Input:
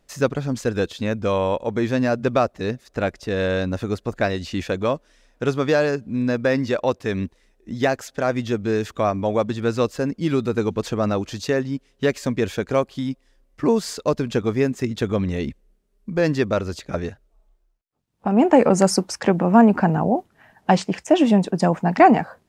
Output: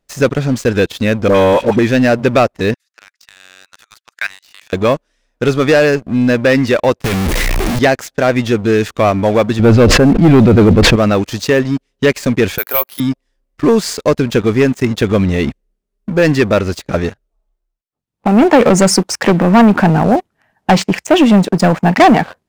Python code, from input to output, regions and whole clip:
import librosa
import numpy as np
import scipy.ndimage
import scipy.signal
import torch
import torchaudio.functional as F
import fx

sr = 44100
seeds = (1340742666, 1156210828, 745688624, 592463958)

y = fx.chain(x, sr, fx.peak_eq(hz=310.0, db=5.5, octaves=1.9),
    fx.dispersion(late='highs', ms=70.0, hz=1000.0), at=(1.28, 1.79))
y = fx.chain(y, sr, fx.highpass(hz=1400.0, slope=24),
    fx.level_steps(step_db=15), at=(2.74, 4.73))
y = fx.chain(y, sr, fx.clip_1bit(),
    fx.low_shelf(hz=200.0, db=5.5),
    fx.band_squash(depth_pct=40), at=(7.04, 7.79))
y = fx.chain(y, sr, fx.lowpass(hz=3700.0, slope=12),
    fx.low_shelf(hz=480.0, db=10.5),
    fx.sustainer(db_per_s=49.0), at=(9.59, 10.96))
y = fx.chain(y, sr, fx.highpass(hz=770.0, slope=12),
    fx.resample_bad(factor=3, down='filtered', up='zero_stuff'), at=(12.58, 13.0))
y = fx.dynamic_eq(y, sr, hz=2200.0, q=1.8, threshold_db=-40.0, ratio=4.0, max_db=5)
y = fx.leveller(y, sr, passes=3)
y = F.gain(torch.from_numpy(y), -1.0).numpy()